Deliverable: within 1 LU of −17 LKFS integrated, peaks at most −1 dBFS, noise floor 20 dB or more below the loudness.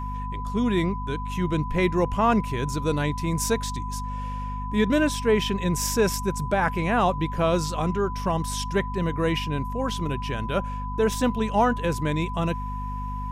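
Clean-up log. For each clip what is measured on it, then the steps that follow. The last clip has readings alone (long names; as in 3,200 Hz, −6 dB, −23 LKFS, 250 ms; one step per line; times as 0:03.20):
mains hum 50 Hz; hum harmonics up to 250 Hz; level of the hum −29 dBFS; interfering tone 1,000 Hz; level of the tone −33 dBFS; integrated loudness −25.5 LKFS; sample peak −9.5 dBFS; target loudness −17.0 LKFS
→ hum removal 50 Hz, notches 5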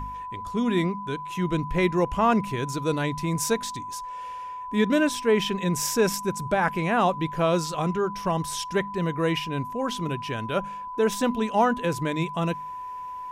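mains hum none found; interfering tone 1,000 Hz; level of the tone −33 dBFS
→ notch filter 1,000 Hz, Q 30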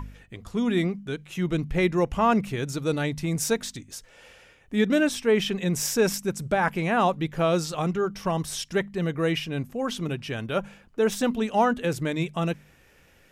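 interfering tone none found; integrated loudness −26.0 LKFS; sample peak −10.5 dBFS; target loudness −17.0 LKFS
→ level +9 dB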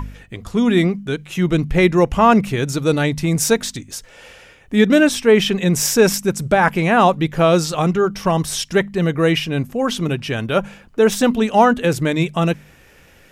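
integrated loudness −17.0 LKFS; sample peak −1.5 dBFS; background noise floor −48 dBFS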